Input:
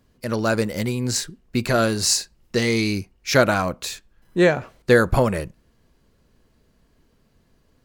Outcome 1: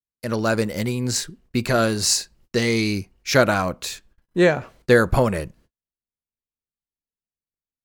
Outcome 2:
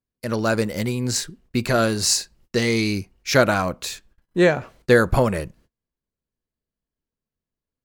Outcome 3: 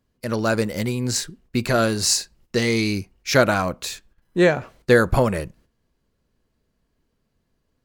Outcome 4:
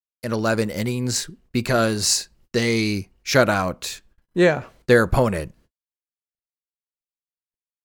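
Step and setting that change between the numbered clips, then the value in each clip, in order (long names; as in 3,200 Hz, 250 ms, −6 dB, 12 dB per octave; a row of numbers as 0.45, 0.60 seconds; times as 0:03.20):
noise gate, range: −42, −28, −10, −60 decibels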